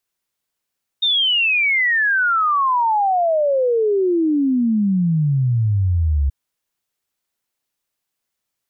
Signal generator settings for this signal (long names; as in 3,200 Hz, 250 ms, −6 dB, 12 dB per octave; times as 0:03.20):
exponential sine sweep 3,700 Hz → 67 Hz 5.28 s −14 dBFS